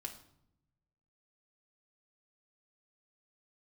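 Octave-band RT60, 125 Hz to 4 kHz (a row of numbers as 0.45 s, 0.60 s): 1.5 s, 1.2 s, 0.80 s, 0.70 s, 0.55 s, 0.50 s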